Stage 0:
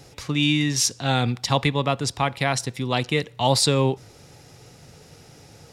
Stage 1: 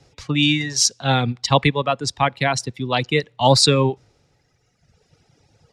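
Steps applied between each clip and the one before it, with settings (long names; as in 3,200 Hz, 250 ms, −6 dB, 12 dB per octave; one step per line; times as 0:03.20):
low-pass filter 6,800 Hz 12 dB per octave
reverb reduction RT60 1.9 s
multiband upward and downward expander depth 40%
level +4.5 dB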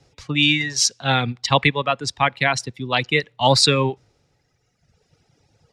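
dynamic equaliser 2,100 Hz, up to +7 dB, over −33 dBFS, Q 0.71
level −3 dB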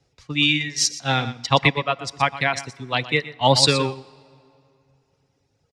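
single-tap delay 121 ms −10.5 dB
on a send at −17 dB: convolution reverb RT60 2.8 s, pre-delay 4 ms
on the sum: expander for the loud parts 1.5 to 1, over −30 dBFS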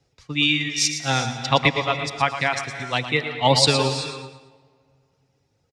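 on a send: repeating echo 112 ms, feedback 41%, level −11.5 dB
on the sum: reverb whose tail is shaped and stops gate 410 ms rising, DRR 10 dB
level −1 dB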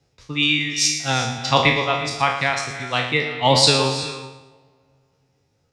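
peak hold with a decay on every bin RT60 0.51 s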